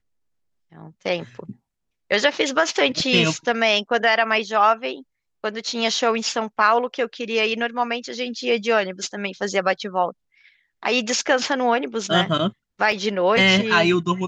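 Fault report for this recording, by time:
12.92 s: dropout 2.3 ms

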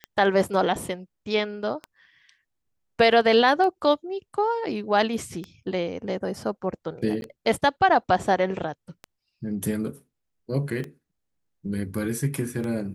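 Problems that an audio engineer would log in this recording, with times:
tick 33 1/3 rpm -20 dBFS
7.21–7.22 s: dropout

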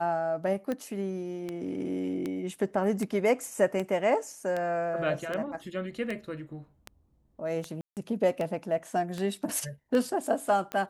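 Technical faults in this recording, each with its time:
tick 78 rpm -20 dBFS
7.81–7.97 s: dropout 158 ms

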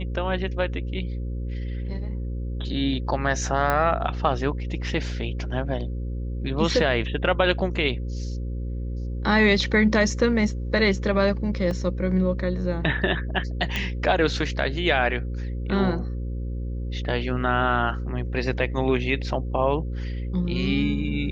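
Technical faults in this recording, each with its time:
buzz 60 Hz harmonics 9 -29 dBFS
3.70 s: pop -10 dBFS
11.71 s: dropout 2.2 ms
13.76 s: pop -12 dBFS

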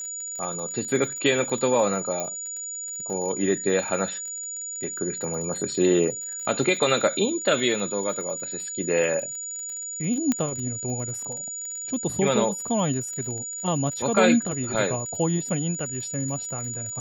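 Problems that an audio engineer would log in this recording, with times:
crackle 37 per s -33 dBFS
whine 6.9 kHz -31 dBFS
2.20 s: pop -15 dBFS
10.32 s: pop -10 dBFS

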